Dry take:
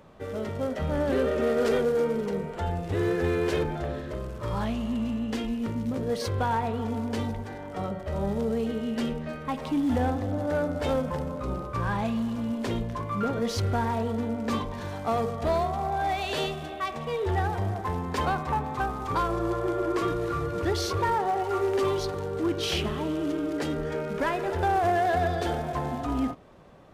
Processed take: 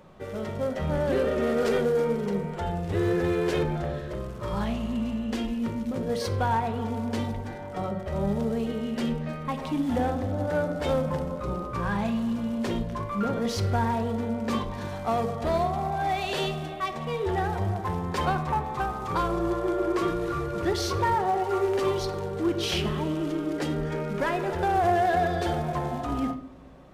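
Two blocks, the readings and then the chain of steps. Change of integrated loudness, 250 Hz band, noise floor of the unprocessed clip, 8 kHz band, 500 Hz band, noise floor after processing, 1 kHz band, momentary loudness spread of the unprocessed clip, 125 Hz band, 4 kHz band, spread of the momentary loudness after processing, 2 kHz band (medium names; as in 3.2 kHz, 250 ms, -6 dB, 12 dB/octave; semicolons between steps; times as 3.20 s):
+0.5 dB, +1.0 dB, -38 dBFS, +0.5 dB, +0.5 dB, -36 dBFS, +1.0 dB, 7 LU, +1.0 dB, +0.5 dB, 7 LU, +0.5 dB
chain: simulated room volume 2100 m³, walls furnished, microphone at 0.97 m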